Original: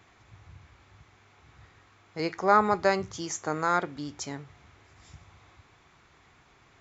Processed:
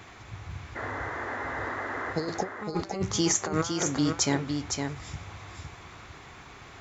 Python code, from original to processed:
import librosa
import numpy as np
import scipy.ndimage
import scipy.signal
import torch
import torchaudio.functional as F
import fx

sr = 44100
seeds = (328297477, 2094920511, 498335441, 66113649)

y = fx.spec_repair(x, sr, seeds[0], start_s=2.14, length_s=0.35, low_hz=880.0, high_hz=3500.0, source='before')
y = fx.over_compress(y, sr, threshold_db=-34.0, ratio=-0.5)
y = fx.spec_paint(y, sr, seeds[1], shape='noise', start_s=0.75, length_s=1.38, low_hz=230.0, high_hz=2100.0, level_db=-40.0)
y = y + 10.0 ** (-5.5 / 20.0) * np.pad(y, (int(510 * sr / 1000.0), 0))[:len(y)]
y = y * librosa.db_to_amplitude(5.0)